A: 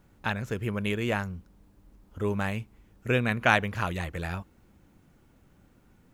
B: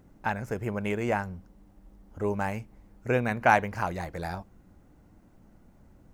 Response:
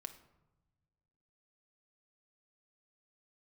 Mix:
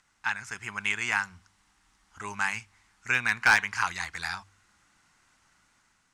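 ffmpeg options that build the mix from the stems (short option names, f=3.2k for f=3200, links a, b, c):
-filter_complex "[0:a]bandreject=f=48.85:t=h:w=4,bandreject=f=97.7:t=h:w=4,bandreject=f=146.55:t=h:w=4,volume=-18.5dB[a];[1:a]highpass=f=1.1k:w=0.5412,highpass=f=1.1k:w=1.3066,highshelf=f=2k:g=8.5,asoftclip=type=tanh:threshold=-14dB,volume=-1,volume=1dB[b];[a][b]amix=inputs=2:normalize=0,lowpass=f=8.9k:w=0.5412,lowpass=f=8.9k:w=1.3066,dynaudnorm=f=250:g=5:m=4dB,asoftclip=type=hard:threshold=-13dB"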